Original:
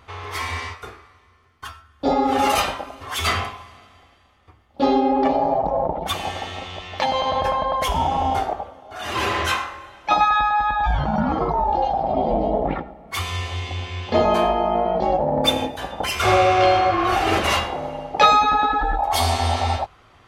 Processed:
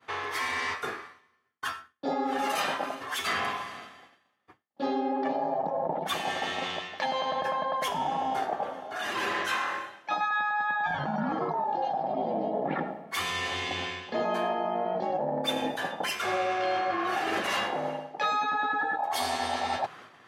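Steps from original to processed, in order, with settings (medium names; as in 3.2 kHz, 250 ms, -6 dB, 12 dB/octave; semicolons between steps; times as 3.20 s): high-pass 150 Hz 24 dB/octave; expander -46 dBFS; peaking EQ 1.7 kHz +9 dB 0.21 oct; reverse; compression 4:1, threshold -34 dBFS, peak gain reduction 21 dB; reverse; trim +4.5 dB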